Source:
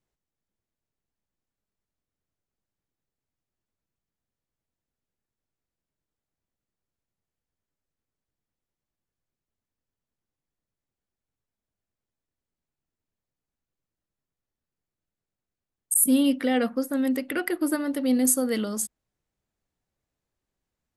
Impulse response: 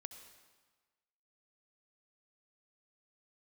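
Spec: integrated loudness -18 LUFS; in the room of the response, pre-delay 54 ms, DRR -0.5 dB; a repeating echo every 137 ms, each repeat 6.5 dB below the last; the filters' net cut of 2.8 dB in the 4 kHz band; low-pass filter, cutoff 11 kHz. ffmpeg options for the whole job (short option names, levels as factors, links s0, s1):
-filter_complex "[0:a]lowpass=11000,equalizer=f=4000:t=o:g=-4,aecho=1:1:137|274|411|548|685|822:0.473|0.222|0.105|0.0491|0.0231|0.0109,asplit=2[s0][s1];[1:a]atrim=start_sample=2205,adelay=54[s2];[s1][s2]afir=irnorm=-1:irlink=0,volume=1.88[s3];[s0][s3]amix=inputs=2:normalize=0,volume=1.26"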